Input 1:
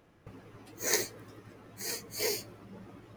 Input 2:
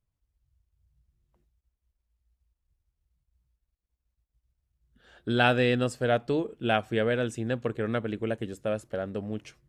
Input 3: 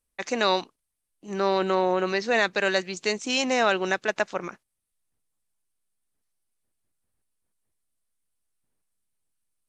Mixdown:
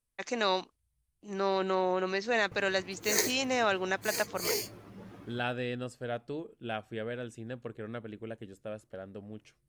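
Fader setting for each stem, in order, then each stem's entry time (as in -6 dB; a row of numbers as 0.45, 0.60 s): +0.5, -11.0, -6.0 dB; 2.25, 0.00, 0.00 s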